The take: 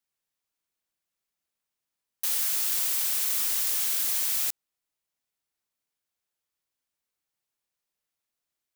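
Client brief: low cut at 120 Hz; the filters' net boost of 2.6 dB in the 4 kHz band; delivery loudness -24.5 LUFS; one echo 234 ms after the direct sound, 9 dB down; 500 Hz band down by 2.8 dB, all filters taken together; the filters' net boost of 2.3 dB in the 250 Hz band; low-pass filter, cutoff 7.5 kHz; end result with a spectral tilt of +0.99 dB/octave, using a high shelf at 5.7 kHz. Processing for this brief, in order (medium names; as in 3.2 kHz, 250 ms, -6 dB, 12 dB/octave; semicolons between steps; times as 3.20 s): high-pass 120 Hz; low-pass 7.5 kHz; peaking EQ 250 Hz +5 dB; peaking EQ 500 Hz -5 dB; peaking EQ 4 kHz +5.5 dB; treble shelf 5.7 kHz -4 dB; delay 234 ms -9 dB; trim +7 dB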